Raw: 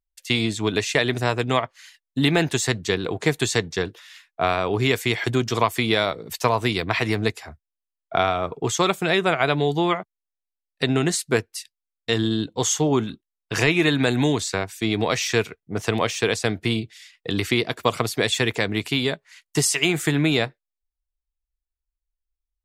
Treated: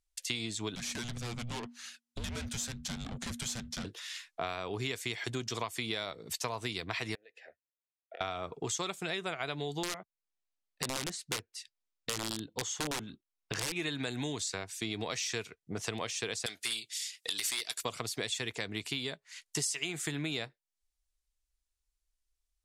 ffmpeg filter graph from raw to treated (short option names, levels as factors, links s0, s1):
-filter_complex "[0:a]asettb=1/sr,asplit=3[s0][s1][s2];[s0]atrim=end=0.754[s3];[s1]atrim=start=0.75:end=3.85,asetpts=PTS-STARTPTS,afade=t=in:d=0.004:c=qsin,afade=t=out:st=3.096:d=0.004:c=qsin,aeval=exprs='(tanh(22.4*val(0)+0.8)-tanh(0.8))/22.4':c=same,afreqshift=-240[s4];[s2]atrim=start=3.846[s5];[s3][s4]acrossfade=d=0.004:c1=hsin:c2=qsin[s6];[s6][s5]acrossfade=d=0.004:c1=qsin:c2=hsin,asettb=1/sr,asplit=3[s7][s8][s9];[s7]atrim=end=7.154[s10];[s8]atrim=start=7.15:end=8.21,asetpts=PTS-STARTPTS,afade=t=in:d=0.004:c=qsin,afade=t=out:st=1.056:d=0.004:c=qsin,acompressor=threshold=0.0316:ratio=12:attack=3.2:release=140:knee=1:detection=peak,asplit=3[s11][s12][s13];[s11]bandpass=f=530:t=q:w=8,volume=1[s14];[s12]bandpass=f=1840:t=q:w=8,volume=0.501[s15];[s13]bandpass=f=2480:t=q:w=8,volume=0.355[s16];[s14][s15][s16]amix=inputs=3:normalize=0,bass=f=250:g=-12,treble=f=4000:g=-5[s17];[s9]atrim=start=8.206[s18];[s10][s17]acrossfade=d=0.004:c1=hsin:c2=qsin[s19];[s19][s18]acrossfade=d=0.004:c1=qsin:c2=hsin,asettb=1/sr,asplit=3[s20][s21][s22];[s20]atrim=end=9.834[s23];[s21]atrim=start=9.83:end=13.76,asetpts=PTS-STARTPTS,afade=t=in:d=0.004:c=qsin,afade=t=out:st=3.926:d=0.004:c=qsin,lowpass=f=2200:p=1,aeval=exprs='(mod(5.31*val(0)+1,2)-1)/5.31':c=same[s24];[s22]atrim=start=13.756[s25];[s23][s24]acrossfade=d=0.004:c1=hsin:c2=qsin[s26];[s26][s25]acrossfade=d=0.004:c1=qsin:c2=hsin,asettb=1/sr,asplit=3[s27][s28][s29];[s27]atrim=end=16.464[s30];[s28]atrim=start=16.46:end=17.83,asetpts=PTS-STARTPTS,afade=t=in:d=0.004:c=qsin,afade=t=out:st=1.366:d=0.004:c=qsin,aderivative,aeval=exprs='0.178*sin(PI/2*3.98*val(0)/0.178)':c=same[s31];[s29]atrim=start=17.826[s32];[s30][s31]acrossfade=d=0.004:c1=hsin:c2=qsin[s33];[s33][s32]acrossfade=d=0.004:c1=qsin:c2=hsin,lowpass=9100,highshelf=f=3500:g=12,acompressor=threshold=0.0112:ratio=3"